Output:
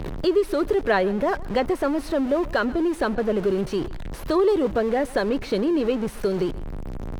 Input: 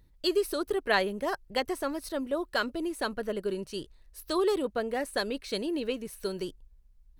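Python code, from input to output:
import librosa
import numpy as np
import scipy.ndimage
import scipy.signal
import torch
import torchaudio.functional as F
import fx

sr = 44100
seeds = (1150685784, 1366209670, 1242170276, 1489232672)

y = x + 0.5 * 10.0 ** (-33.5 / 20.0) * np.sign(x)
y = fx.wow_flutter(y, sr, seeds[0], rate_hz=2.1, depth_cents=26.0)
y = fx.lowpass(y, sr, hz=1200.0, slope=6)
y = y + 10.0 ** (-22.5 / 20.0) * np.pad(y, (int(131 * sr / 1000.0), 0))[:len(y)]
y = fx.band_squash(y, sr, depth_pct=40)
y = y * 10.0 ** (7.5 / 20.0)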